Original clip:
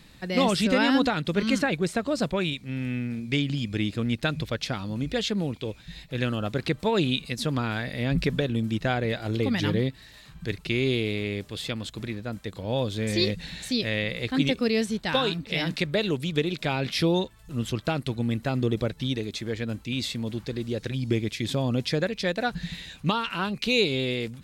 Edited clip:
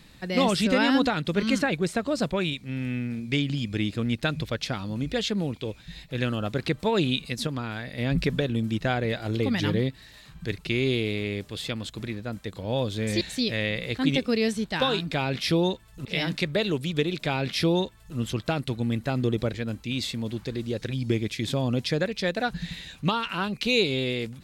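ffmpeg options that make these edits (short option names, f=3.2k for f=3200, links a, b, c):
-filter_complex "[0:a]asplit=7[a][b][c][d][e][f][g];[a]atrim=end=7.472[h];[b]atrim=start=7.468:end=7.982,asetpts=PTS-STARTPTS,volume=-4.5dB[i];[c]atrim=start=7.978:end=13.212[j];[d]atrim=start=13.538:end=15.442[k];[e]atrim=start=16.618:end=17.562[l];[f]atrim=start=15.438:end=18.932[m];[g]atrim=start=19.548[n];[h][i]acrossfade=d=0.004:c1=hsin:c2=hsin[o];[o][j]acrossfade=d=0.004:c1=hsin:c2=hsin[p];[p][k]acrossfade=d=0.004:c1=hsin:c2=hsin[q];[q][l]acrossfade=d=0.004:c1=hsin:c2=hsin[r];[r][m]acrossfade=d=0.004:c1=hsin:c2=hsin[s];[s][n]acrossfade=d=0.004:c1=hsin:c2=hsin"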